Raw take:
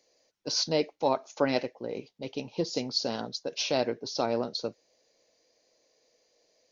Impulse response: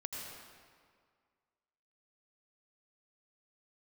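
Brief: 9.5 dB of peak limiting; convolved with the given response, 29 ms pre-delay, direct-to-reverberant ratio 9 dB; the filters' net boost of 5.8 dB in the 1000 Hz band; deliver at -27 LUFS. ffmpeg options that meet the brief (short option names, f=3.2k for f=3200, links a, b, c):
-filter_complex "[0:a]equalizer=f=1k:t=o:g=7.5,alimiter=limit=-18.5dB:level=0:latency=1,asplit=2[a][b];[1:a]atrim=start_sample=2205,adelay=29[c];[b][c]afir=irnorm=-1:irlink=0,volume=-9dB[d];[a][d]amix=inputs=2:normalize=0,volume=4.5dB"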